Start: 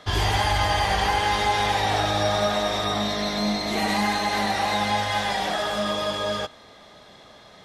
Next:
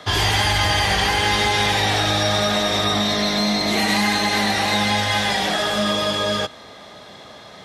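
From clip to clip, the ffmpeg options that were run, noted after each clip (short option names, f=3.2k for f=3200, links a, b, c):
-filter_complex "[0:a]highpass=67,acrossover=split=490|1400[a][b][c];[a]alimiter=level_in=1dB:limit=-24dB:level=0:latency=1,volume=-1dB[d];[b]acompressor=threshold=-35dB:ratio=6[e];[d][e][c]amix=inputs=3:normalize=0,volume=7.5dB"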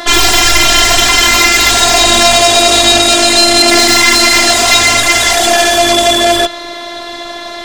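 -af "afftfilt=real='hypot(re,im)*cos(PI*b)':imag='0':win_size=512:overlap=0.75,aeval=exprs='0.531*sin(PI/2*4.47*val(0)/0.531)':c=same,volume=4dB"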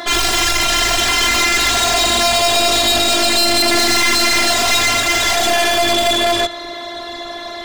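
-af "aeval=exprs='(tanh(3.16*val(0)+0.3)-tanh(0.3))/3.16':c=same,volume=-1.5dB"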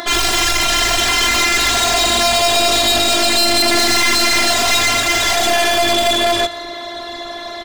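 -af "acompressor=mode=upward:threshold=-29dB:ratio=2.5,aecho=1:1:170:0.0841"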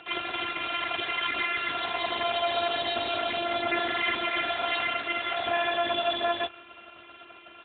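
-af "aeval=exprs='0.376*(cos(1*acos(clip(val(0)/0.376,-1,1)))-cos(1*PI/2))+0.106*(cos(3*acos(clip(val(0)/0.376,-1,1)))-cos(3*PI/2))+0.0376*(cos(8*acos(clip(val(0)/0.376,-1,1)))-cos(8*PI/2))':c=same,volume=-8dB" -ar 8000 -c:a libopencore_amrnb -b:a 10200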